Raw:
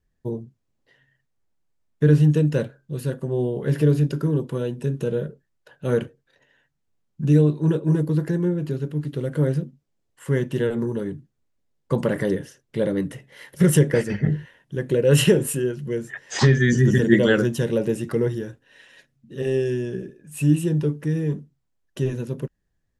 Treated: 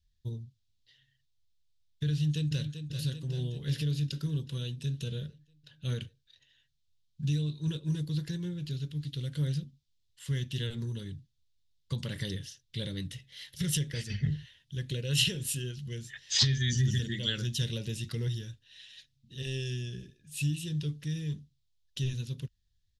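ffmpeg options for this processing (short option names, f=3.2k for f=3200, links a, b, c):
-filter_complex "[0:a]asplit=2[a][b];[b]afade=t=in:st=2.12:d=0.01,afade=t=out:st=2.77:d=0.01,aecho=0:1:390|780|1170|1560|1950|2340|2730|3120|3510:0.316228|0.205548|0.133606|0.0868441|0.0564486|0.0366916|0.0238495|0.0155022|0.0100764[c];[a][c]amix=inputs=2:normalize=0,asettb=1/sr,asplit=3[d][e][f];[d]atrim=end=5.274[g];[e]atrim=start=5.27:end=6,asetpts=PTS-STARTPTS,afade=t=in:d=0.004:c=qsin,afade=t=out:st=0.726:d=0.004:c=qsin,equalizer=f=11k:w=0.34:g=-3.5[h];[f]atrim=start=5.996[i];[g][h]acrossfade=d=0.004:c1=hsin:c2=qsin[j];[j][i]acrossfade=d=0.004:c1=qsin:c2=hsin,highshelf=f=10k:g=-3.5,alimiter=limit=-11.5dB:level=0:latency=1:release=312,firequalizer=gain_entry='entry(100,0);entry(160,-11);entry(320,-20);entry(700,-23);entry(3600,9);entry(8200,-3)':delay=0.05:min_phase=1"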